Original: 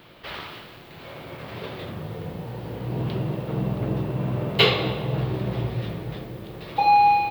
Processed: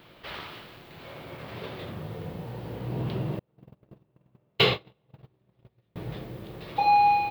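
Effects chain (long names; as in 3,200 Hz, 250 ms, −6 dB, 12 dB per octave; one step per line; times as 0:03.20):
0:03.39–0:05.96: noise gate −20 dBFS, range −39 dB
level −3.5 dB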